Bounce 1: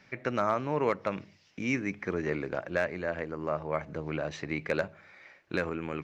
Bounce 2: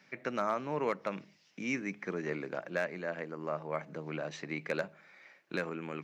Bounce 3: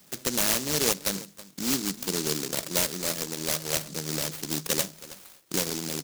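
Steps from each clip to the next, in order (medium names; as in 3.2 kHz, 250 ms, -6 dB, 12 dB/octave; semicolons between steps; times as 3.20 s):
Chebyshev high-pass 160 Hz, order 3; treble shelf 6.8 kHz +5.5 dB; trim -4 dB
delay 322 ms -18 dB; delay time shaken by noise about 5.6 kHz, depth 0.36 ms; trim +7.5 dB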